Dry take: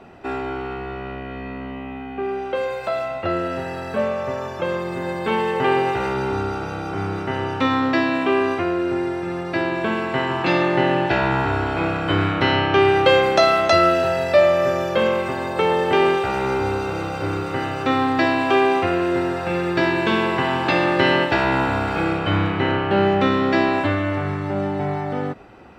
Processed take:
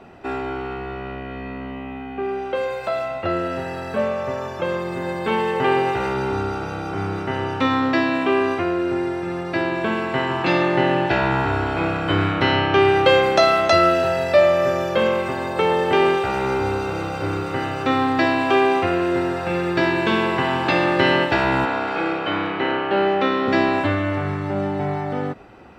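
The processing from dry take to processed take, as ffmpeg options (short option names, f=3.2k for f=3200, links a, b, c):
-filter_complex "[0:a]asettb=1/sr,asplit=3[a][b][c];[a]atrim=end=21.654[d];[b]atrim=start=21.65:end=23.48,asetpts=PTS-STARTPTS,afade=t=in:d=0.004:c=qsin,afade=t=out:st=1.826:d=0.004:c=qsin,acrossover=split=230 6300:gain=0.112 1 0.141[e][f][g];[e][f][g]amix=inputs=3:normalize=0[h];[c]atrim=start=23.476[i];[d][h]acrossfade=d=0.004:c1=hsin:c2=qsin[j];[j][i]acrossfade=d=0.004:c1=qsin:c2=hsin"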